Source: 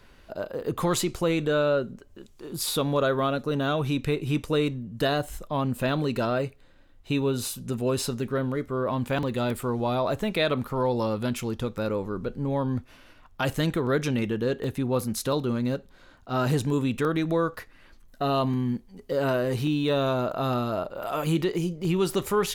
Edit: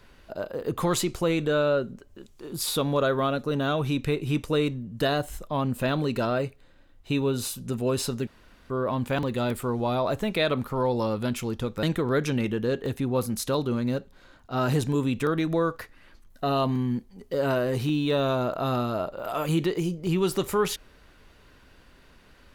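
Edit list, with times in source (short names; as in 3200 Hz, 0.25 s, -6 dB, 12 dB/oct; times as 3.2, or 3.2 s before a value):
8.27–8.7 room tone
11.83–13.61 cut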